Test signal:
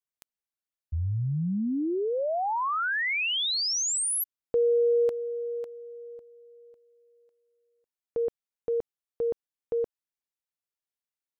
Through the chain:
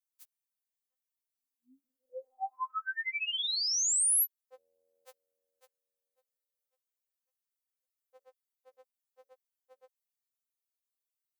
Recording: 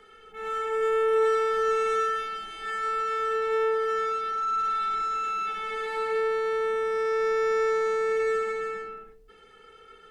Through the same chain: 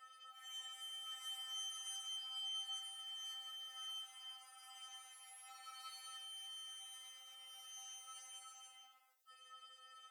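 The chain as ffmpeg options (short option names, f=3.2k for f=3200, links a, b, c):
-af "highpass=f=660:w=0.5412,highpass=f=660:w=1.3066,crystalizer=i=2.5:c=0,afftfilt=real='re*3.46*eq(mod(b,12),0)':imag='im*3.46*eq(mod(b,12),0)':win_size=2048:overlap=0.75,volume=-8dB"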